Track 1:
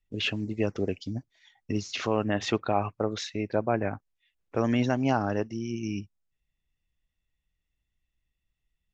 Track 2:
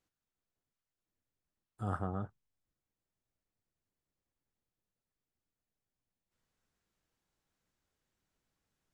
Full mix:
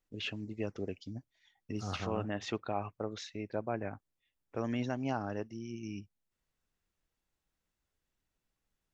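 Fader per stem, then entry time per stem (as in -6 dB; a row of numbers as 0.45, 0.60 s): -9.5, -3.0 dB; 0.00, 0.00 s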